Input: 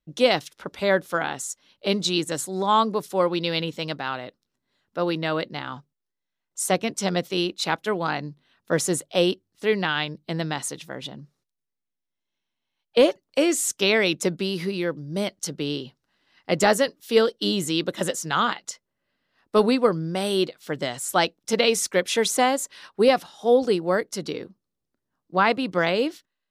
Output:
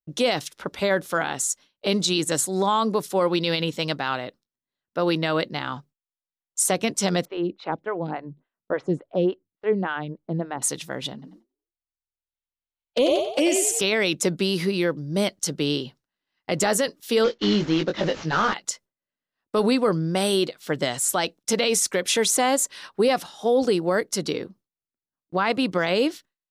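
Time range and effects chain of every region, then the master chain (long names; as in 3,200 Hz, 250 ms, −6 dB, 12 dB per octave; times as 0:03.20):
0:07.25–0:10.62: head-to-tape spacing loss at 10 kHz 43 dB + phaser with staggered stages 3.5 Hz
0:11.13–0:13.81: flanger swept by the level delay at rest 5.7 ms, full sweep at −15.5 dBFS + echo with shifted repeats 91 ms, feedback 42%, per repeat +39 Hz, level −5 dB
0:17.24–0:18.54: variable-slope delta modulation 32 kbit/s + high-frequency loss of the air 55 metres + double-tracking delay 19 ms −5 dB
whole clip: noise gate with hold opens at −43 dBFS; dynamic equaliser 8,500 Hz, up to +4 dB, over −43 dBFS, Q 0.74; brickwall limiter −15.5 dBFS; level +3.5 dB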